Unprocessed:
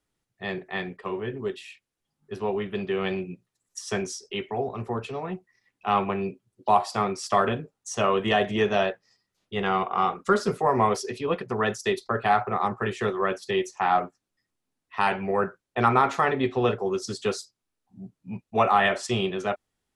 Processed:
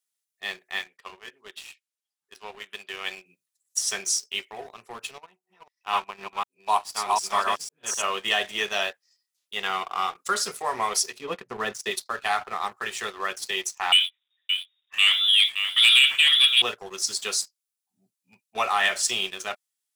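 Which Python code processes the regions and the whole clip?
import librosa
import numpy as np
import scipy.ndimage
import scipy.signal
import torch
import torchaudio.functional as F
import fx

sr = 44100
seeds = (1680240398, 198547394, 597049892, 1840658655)

y = fx.chain(x, sr, fx.highpass(hz=520.0, slope=6),
    fx.high_shelf(hz=7500.0, db=-10.5), at=(0.79, 3.26))
y = fx.chain(y, sr, fx.reverse_delay(ms=251, wet_db=-1),
    fx.peak_eq(hz=960.0, db=8.0, octaves=0.25),
    fx.upward_expand(threshold_db=-34.0, expansion=1.5), at=(5.18, 8.03))
y = fx.chain(y, sr, fx.highpass(hz=120.0, slope=12),
    fx.tilt_eq(slope=-3.5), at=(11.14, 11.91))
y = fx.chain(y, sr, fx.law_mismatch(coded='mu'),
    fx.echo_single(ms=572, db=-9.5),
    fx.freq_invert(carrier_hz=3700), at=(13.92, 16.62))
y = np.diff(y, prepend=0.0)
y = fx.leveller(y, sr, passes=2)
y = y * 10.0 ** (6.0 / 20.0)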